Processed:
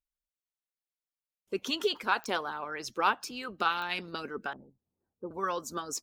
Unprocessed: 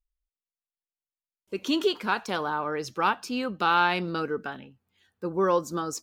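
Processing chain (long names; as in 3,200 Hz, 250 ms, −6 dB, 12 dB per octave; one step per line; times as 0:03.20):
0:04.53–0:05.31: Bessel low-pass filter 610 Hz, order 8
harmonic and percussive parts rebalanced harmonic −14 dB
digital clicks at 0:02.24/0:03.24/0:03.82, −26 dBFS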